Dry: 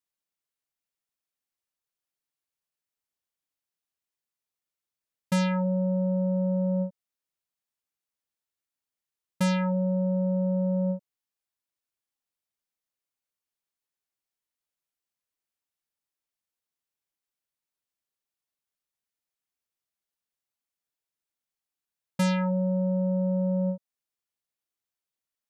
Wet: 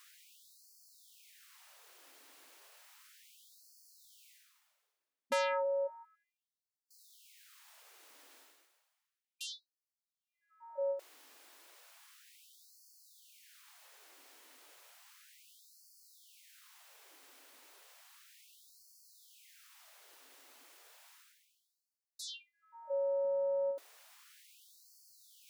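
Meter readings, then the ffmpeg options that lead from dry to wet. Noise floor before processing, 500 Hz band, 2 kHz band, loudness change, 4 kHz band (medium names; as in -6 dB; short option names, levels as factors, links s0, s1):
under -85 dBFS, -5.0 dB, -6.0 dB, -10.0 dB, -4.0 dB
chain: -af "highshelf=f=3800:g=-8,areverse,acompressor=mode=upward:threshold=0.0251:ratio=2.5,areverse,afftfilt=real='re*gte(b*sr/1024,220*pow(4300/220,0.5+0.5*sin(2*PI*0.33*pts/sr)))':imag='im*gte(b*sr/1024,220*pow(4300/220,0.5+0.5*sin(2*PI*0.33*pts/sr)))':win_size=1024:overlap=0.75"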